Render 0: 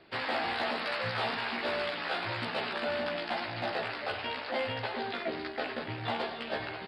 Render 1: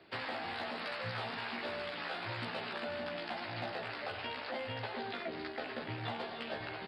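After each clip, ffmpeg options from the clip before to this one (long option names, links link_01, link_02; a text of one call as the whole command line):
ffmpeg -i in.wav -filter_complex "[0:a]highpass=55,acrossover=split=180[link_01][link_02];[link_02]acompressor=threshold=-35dB:ratio=6[link_03];[link_01][link_03]amix=inputs=2:normalize=0,volume=-2dB" out.wav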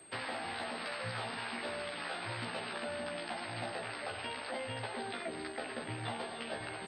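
ffmpeg -i in.wav -af "aeval=exprs='val(0)+0.00178*sin(2*PI*8400*n/s)':channel_layout=same" out.wav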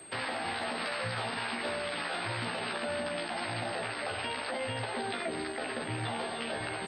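ffmpeg -i in.wav -af "alimiter=level_in=8dB:limit=-24dB:level=0:latency=1:release=35,volume=-8dB,volume=6.5dB" out.wav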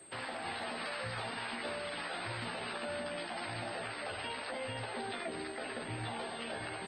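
ffmpeg -i in.wav -af "volume=-5dB" -ar 48000 -c:a libopus -b:a 20k out.opus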